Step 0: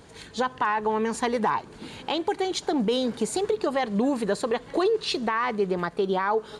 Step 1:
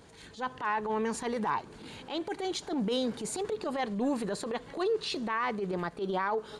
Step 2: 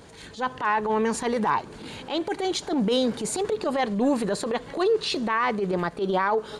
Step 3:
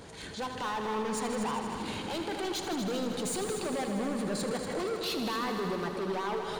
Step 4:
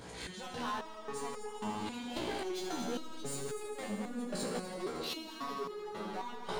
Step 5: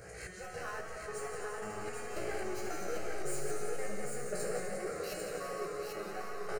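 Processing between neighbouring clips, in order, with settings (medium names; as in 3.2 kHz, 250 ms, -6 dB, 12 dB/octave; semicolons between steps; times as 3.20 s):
transient shaper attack -12 dB, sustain +1 dB; trim -4.5 dB
peaking EQ 570 Hz +2 dB 0.29 oct; trim +7 dB
compression, threshold -27 dBFS, peak gain reduction 9.5 dB; hard clipper -32 dBFS, distortion -8 dB; multi-head delay 79 ms, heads all three, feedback 64%, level -11 dB
on a send at -8 dB: reverberation RT60 1.2 s, pre-delay 66 ms; on the sum: peak limiter -29 dBFS, peak gain reduction 8 dB; resonator arpeggio 3.7 Hz 61–420 Hz; trim +8 dB
static phaser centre 950 Hz, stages 6; delay 793 ms -4 dB; modulated delay 175 ms, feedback 78%, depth 127 cents, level -9 dB; trim +2 dB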